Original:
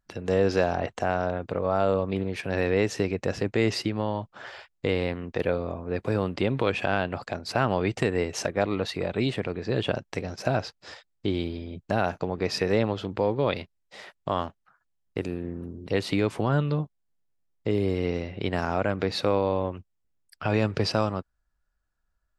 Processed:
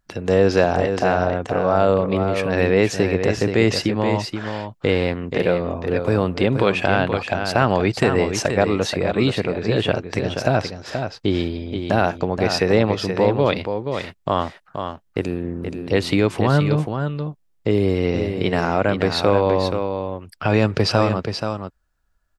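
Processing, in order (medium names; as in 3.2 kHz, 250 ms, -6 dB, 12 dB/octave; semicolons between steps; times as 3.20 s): delay 478 ms -7 dB; trim +7 dB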